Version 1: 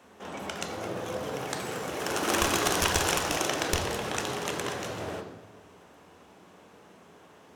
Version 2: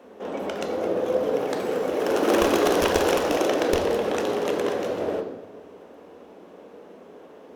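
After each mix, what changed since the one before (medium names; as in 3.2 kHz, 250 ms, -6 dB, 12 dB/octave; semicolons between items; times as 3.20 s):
master: add graphic EQ 125/250/500/8000 Hz -7/+8/+12/-7 dB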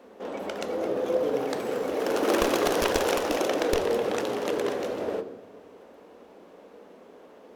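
background: send -8.0 dB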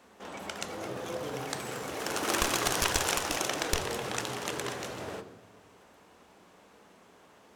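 master: add graphic EQ 125/250/500/8000 Hz +7/-8/-12/+7 dB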